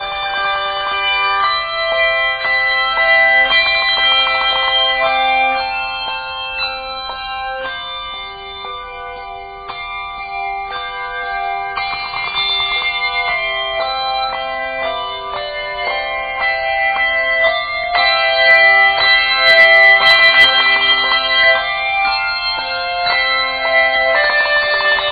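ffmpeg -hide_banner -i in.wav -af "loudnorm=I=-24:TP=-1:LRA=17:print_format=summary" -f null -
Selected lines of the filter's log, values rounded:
Input Integrated:    -12.9 LUFS
Input True Peak:      -1.1 dBTP
Input LRA:            13.9 LU
Input Threshold:     -23.3 LUFS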